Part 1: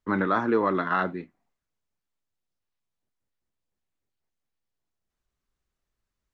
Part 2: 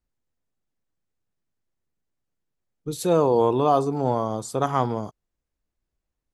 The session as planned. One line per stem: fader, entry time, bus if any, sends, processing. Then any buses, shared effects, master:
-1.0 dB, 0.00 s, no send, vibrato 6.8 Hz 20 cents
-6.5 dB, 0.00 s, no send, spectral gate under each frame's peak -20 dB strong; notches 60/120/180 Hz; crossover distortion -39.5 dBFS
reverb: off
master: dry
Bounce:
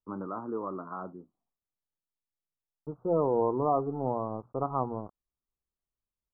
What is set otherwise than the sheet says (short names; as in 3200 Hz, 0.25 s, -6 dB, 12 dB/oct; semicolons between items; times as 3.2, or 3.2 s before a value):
stem 1 -1.0 dB -> -11.5 dB; master: extra steep low-pass 1300 Hz 72 dB/oct